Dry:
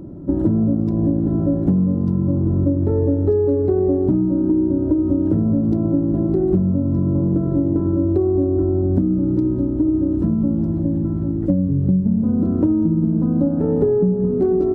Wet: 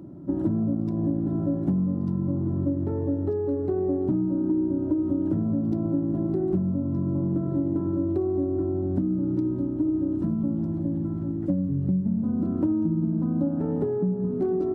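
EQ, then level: HPF 120 Hz 12 dB/oct; bell 220 Hz -2.5 dB 0.82 oct; bell 470 Hz -8 dB 0.48 oct; -4.5 dB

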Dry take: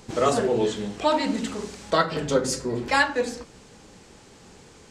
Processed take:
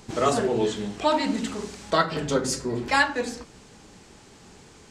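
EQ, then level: bell 510 Hz -5.5 dB 0.21 oct; 0.0 dB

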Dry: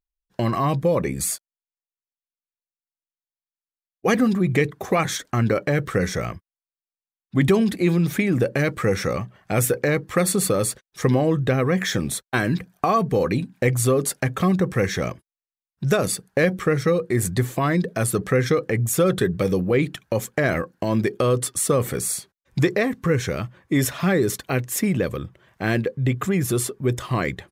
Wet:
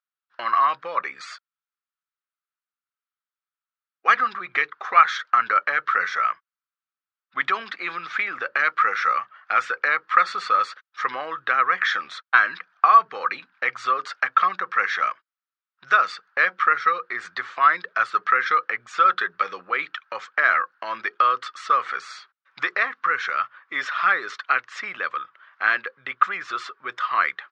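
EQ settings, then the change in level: resonant high-pass 1300 Hz, resonance Q 5.3; LPF 4900 Hz 24 dB/oct; air absorption 94 m; +1.0 dB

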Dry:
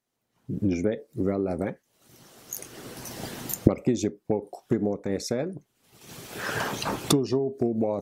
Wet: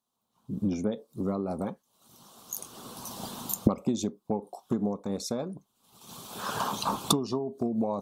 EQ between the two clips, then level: EQ curve 140 Hz 0 dB, 210 Hz +8 dB, 320 Hz -1 dB, 610 Hz +3 dB, 1100 Hz +13 dB, 1900 Hz -10 dB, 3600 Hz +9 dB, 5100 Hz +4 dB, 8700 Hz +7 dB; -7.0 dB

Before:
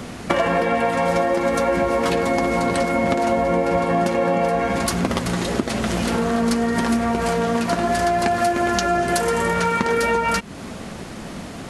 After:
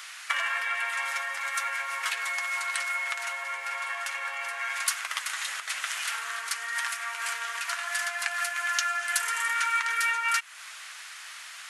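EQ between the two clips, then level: HPF 1400 Hz 24 dB/oct; dynamic EQ 4500 Hz, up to -5 dB, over -46 dBFS, Q 1.6; 0.0 dB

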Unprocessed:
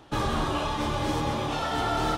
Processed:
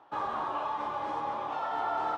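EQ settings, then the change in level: band-pass 950 Hz, Q 1.9; 0.0 dB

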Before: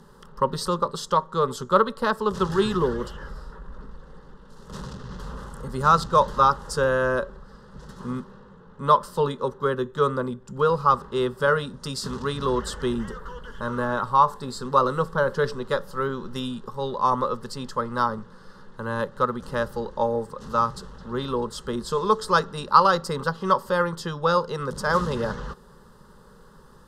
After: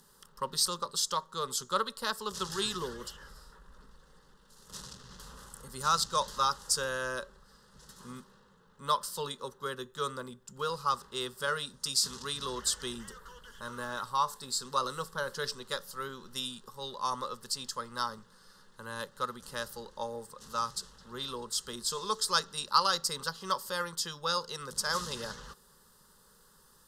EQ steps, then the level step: pre-emphasis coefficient 0.9; dynamic EQ 5200 Hz, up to +5 dB, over -52 dBFS, Q 0.79; +3.5 dB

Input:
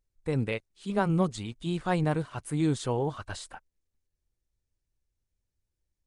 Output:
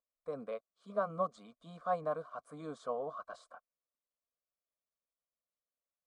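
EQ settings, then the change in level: vowel filter a; fixed phaser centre 530 Hz, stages 8; +8.5 dB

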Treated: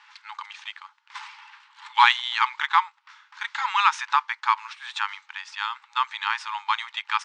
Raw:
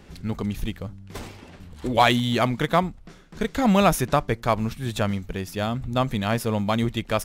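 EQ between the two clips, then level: brick-wall FIR band-pass 820–9400 Hz; air absorption 160 m; +6.0 dB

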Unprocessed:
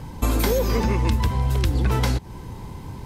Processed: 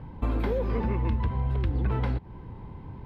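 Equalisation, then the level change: air absorption 470 m; -5.5 dB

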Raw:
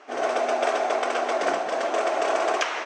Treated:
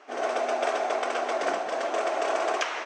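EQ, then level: HPF 140 Hz 6 dB/oct; -3.0 dB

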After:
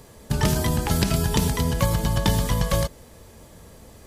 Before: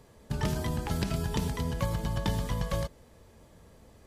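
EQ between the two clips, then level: high shelf 5500 Hz +8 dB; +8.5 dB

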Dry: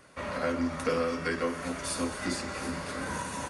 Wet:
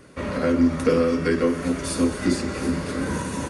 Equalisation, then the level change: resonant low shelf 530 Hz +7 dB, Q 1.5; +4.0 dB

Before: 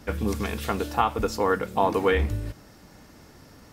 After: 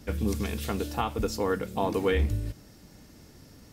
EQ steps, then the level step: bell 1100 Hz -8.5 dB 2.2 oct; 0.0 dB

